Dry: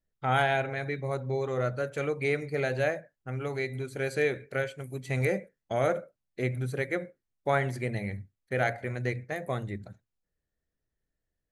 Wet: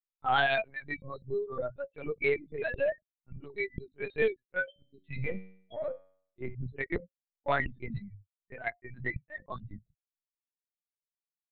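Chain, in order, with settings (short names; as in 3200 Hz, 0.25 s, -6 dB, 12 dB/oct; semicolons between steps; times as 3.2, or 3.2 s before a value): per-bin expansion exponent 3; high shelf 2200 Hz +10 dB; 8.01–8.66 compressor 8:1, threshold -48 dBFS, peak gain reduction 18 dB; soft clip -23.5 dBFS, distortion -16 dB; LPC vocoder at 8 kHz pitch kept; 4.68–6.55 resonator 94 Hz, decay 0.61 s, harmonics all, mix 60%; gain +4.5 dB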